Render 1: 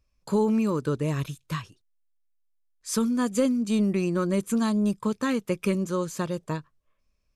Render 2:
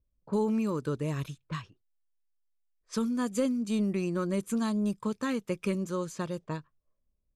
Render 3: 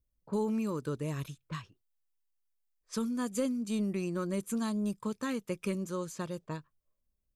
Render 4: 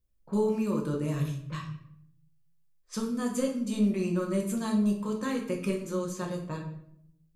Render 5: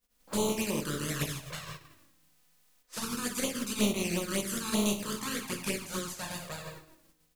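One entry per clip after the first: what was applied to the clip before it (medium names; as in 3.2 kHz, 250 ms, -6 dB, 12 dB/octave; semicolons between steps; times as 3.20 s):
level-controlled noise filter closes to 490 Hz, open at -25 dBFS; trim -5 dB
treble shelf 8.9 kHz +8 dB; trim -3.5 dB
simulated room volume 140 m³, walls mixed, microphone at 0.91 m
spectral contrast reduction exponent 0.46; touch-sensitive flanger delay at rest 4.2 ms, full sweep at -23.5 dBFS; delay 155 ms -21 dB; trim -1.5 dB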